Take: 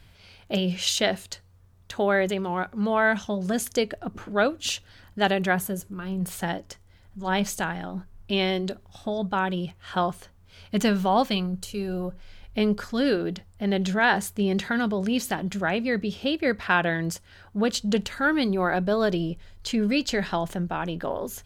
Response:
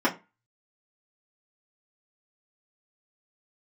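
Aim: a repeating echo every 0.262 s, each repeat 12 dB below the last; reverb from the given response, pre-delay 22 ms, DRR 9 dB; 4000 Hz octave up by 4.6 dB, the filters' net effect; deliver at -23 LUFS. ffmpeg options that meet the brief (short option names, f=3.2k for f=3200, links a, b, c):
-filter_complex "[0:a]equalizer=f=4k:t=o:g=6,aecho=1:1:262|524|786:0.251|0.0628|0.0157,asplit=2[a][b];[1:a]atrim=start_sample=2205,adelay=22[c];[b][c]afir=irnorm=-1:irlink=0,volume=-23.5dB[d];[a][d]amix=inputs=2:normalize=0,volume=1.5dB"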